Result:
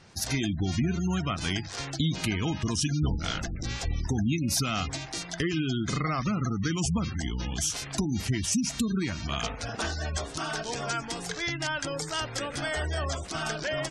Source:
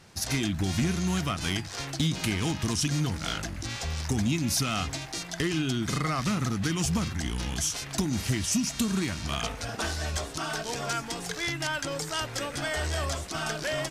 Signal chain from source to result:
0:03.02–0:04.08: sub-octave generator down 1 octave, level +1 dB
gate on every frequency bin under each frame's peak −25 dB strong

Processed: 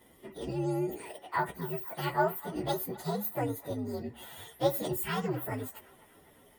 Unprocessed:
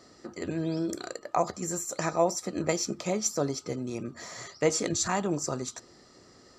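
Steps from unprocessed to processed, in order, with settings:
partials spread apart or drawn together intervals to 127%
delay with a band-pass on its return 253 ms, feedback 58%, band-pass 1,500 Hz, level −17 dB

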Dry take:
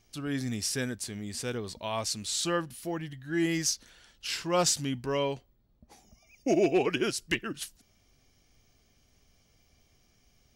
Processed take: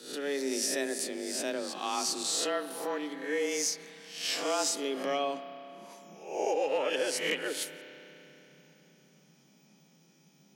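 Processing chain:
peak hold with a rise ahead of every peak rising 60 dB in 0.57 s
downward compressor, threshold −27 dBFS, peak gain reduction 8 dB
frequency shifter +140 Hz
spring reverb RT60 3.5 s, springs 30 ms, chirp 40 ms, DRR 10 dB

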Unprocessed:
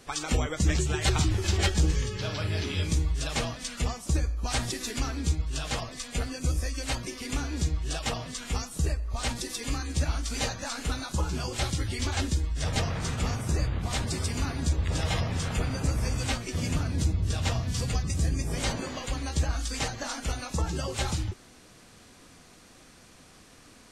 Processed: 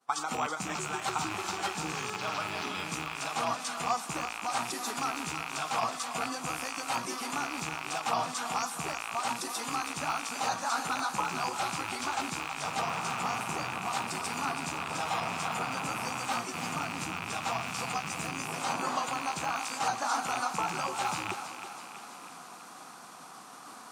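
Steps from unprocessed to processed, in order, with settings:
loose part that buzzes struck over −33 dBFS, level −21 dBFS
high-pass filter 160 Hz 24 dB per octave
high-shelf EQ 9,900 Hz +10 dB
reversed playback
downward compressor 16 to 1, threshold −38 dBFS, peak gain reduction 17 dB
reversed playback
downward expander −48 dBFS
flat-topped bell 1,000 Hz +13 dB 1.2 octaves
feedback echo with a high-pass in the loop 326 ms, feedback 60%, high-pass 420 Hz, level −9 dB
level +4.5 dB

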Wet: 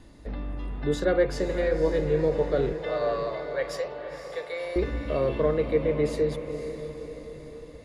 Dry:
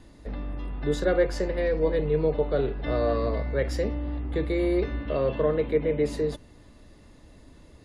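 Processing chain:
0:02.73–0:04.76: Butterworth high-pass 500 Hz 48 dB per octave
feedback delay with all-pass diffusion 525 ms, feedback 53%, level −9.5 dB

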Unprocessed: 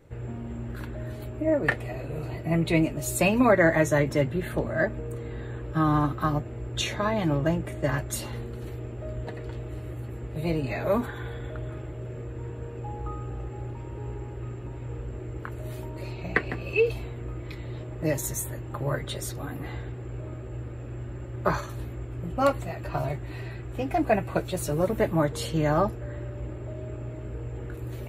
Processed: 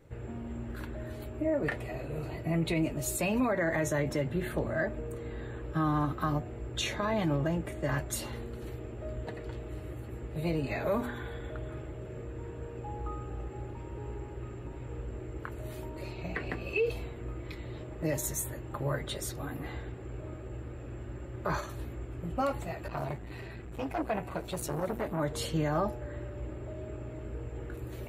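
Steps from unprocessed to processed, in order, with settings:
hum removal 121.2 Hz, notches 8
brickwall limiter −18.5 dBFS, peak gain reduction 11.5 dB
0:22.88–0:25.20: saturating transformer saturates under 540 Hz
level −2.5 dB

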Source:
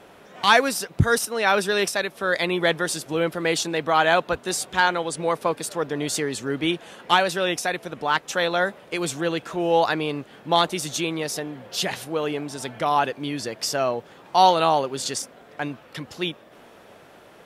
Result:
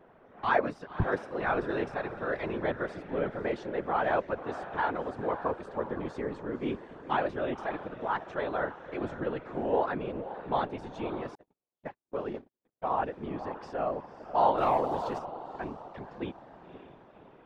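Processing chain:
low-pass filter 1,400 Hz 12 dB per octave
on a send: feedback delay with all-pass diffusion 539 ms, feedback 49%, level −12 dB
0:14.58–0:15.19: on the sum: leveller curve on the samples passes 1
random phases in short frames
0:11.35–0:12.96: noise gate −25 dBFS, range −54 dB
level −8 dB

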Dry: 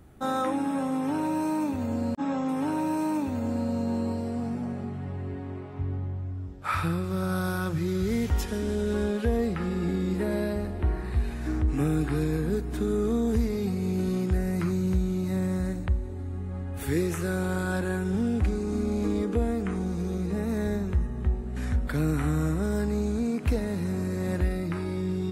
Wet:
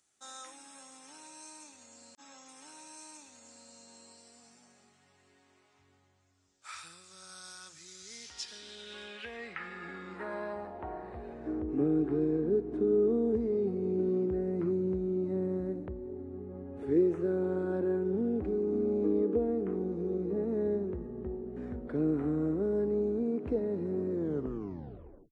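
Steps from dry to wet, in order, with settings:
turntable brake at the end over 1.21 s
band-pass filter sweep 6,700 Hz → 380 Hz, 0:07.98–0:11.78
downsampling to 22,050 Hz
level +3.5 dB

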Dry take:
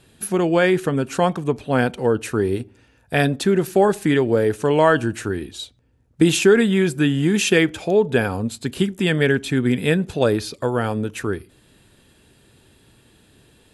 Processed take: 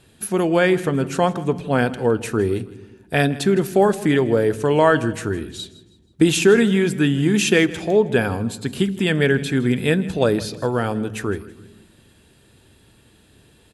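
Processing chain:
repeating echo 161 ms, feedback 36%, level −18.5 dB
on a send at −18.5 dB: convolution reverb RT60 1.2 s, pre-delay 3 ms

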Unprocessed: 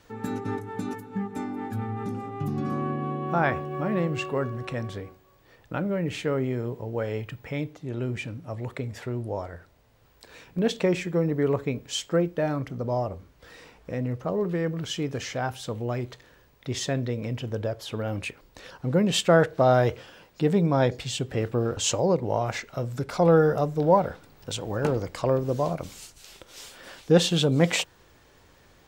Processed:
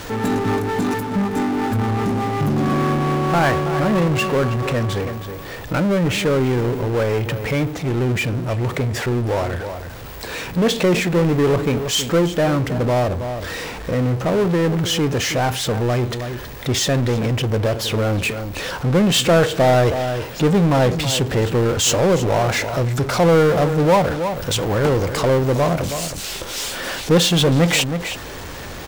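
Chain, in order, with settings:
slap from a distant wall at 55 metres, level −16 dB
power curve on the samples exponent 0.5

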